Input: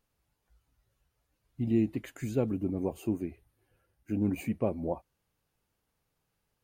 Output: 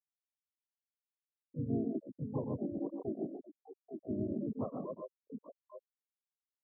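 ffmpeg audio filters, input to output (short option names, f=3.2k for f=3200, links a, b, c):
-filter_complex "[0:a]equalizer=f=3.8k:w=0.41:g=-3,asplit=2[a][b];[b]aecho=0:1:79|101|115|140|171|859:0.224|0.2|0.447|0.562|0.224|0.2[c];[a][c]amix=inputs=2:normalize=0,acompressor=threshold=-44dB:ratio=2.5,afftfilt=real='re*gte(hypot(re,im),0.0447)':imag='im*gte(hypot(re,im),0.0447)':win_size=1024:overlap=0.75,asplit=4[d][e][f][g];[e]asetrate=33038,aresample=44100,atempo=1.33484,volume=-11dB[h];[f]asetrate=52444,aresample=44100,atempo=0.840896,volume=-1dB[i];[g]asetrate=88200,aresample=44100,atempo=0.5,volume=-8dB[j];[d][h][i][j]amix=inputs=4:normalize=0,volume=2dB"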